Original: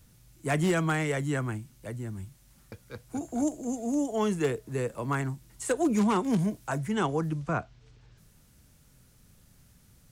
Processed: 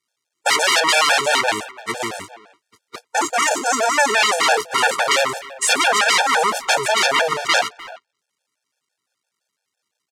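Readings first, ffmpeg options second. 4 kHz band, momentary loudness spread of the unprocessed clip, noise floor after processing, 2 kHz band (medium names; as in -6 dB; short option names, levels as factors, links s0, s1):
+26.5 dB, 13 LU, -80 dBFS, +19.5 dB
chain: -filter_complex "[0:a]aeval=exprs='val(0)+0.5*0.0141*sgn(val(0))':c=same,agate=range=0.00224:threshold=0.02:ratio=16:detection=peak,aeval=exprs='0.158*sin(PI/2*6.31*val(0)/0.158)':c=same,highpass=670,lowpass=7700,asplit=2[s0][s1];[s1]adelay=300,highpass=300,lowpass=3400,asoftclip=type=hard:threshold=0.112,volume=0.141[s2];[s0][s2]amix=inputs=2:normalize=0,afftfilt=real='re*gt(sin(2*PI*5.9*pts/sr)*(1-2*mod(floor(b*sr/1024/460),2)),0)':imag='im*gt(sin(2*PI*5.9*pts/sr)*(1-2*mod(floor(b*sr/1024/460),2)),0)':win_size=1024:overlap=0.75,volume=2.66"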